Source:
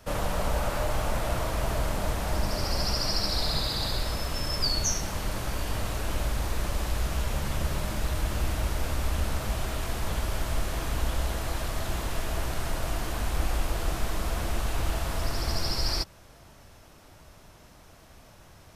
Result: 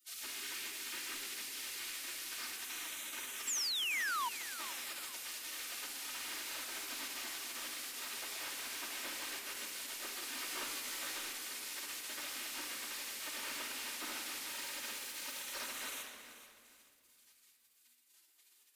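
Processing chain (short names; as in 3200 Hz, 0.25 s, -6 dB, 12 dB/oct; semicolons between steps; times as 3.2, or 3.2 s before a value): 14.49–15.41 minimum comb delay 2.8 ms; spectral gate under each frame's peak -30 dB weak; Chebyshev high-pass 210 Hz, order 10; low shelf 340 Hz +3.5 dB; soft clip -38 dBFS, distortion -16 dB; 10.36–11.18 doubler 16 ms -4 dB; shoebox room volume 3200 m³, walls mixed, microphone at 2.7 m; 3.47–4.29 painted sound fall 910–7900 Hz -35 dBFS; lo-fi delay 0.436 s, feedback 35%, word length 11-bit, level -13.5 dB; gain -1.5 dB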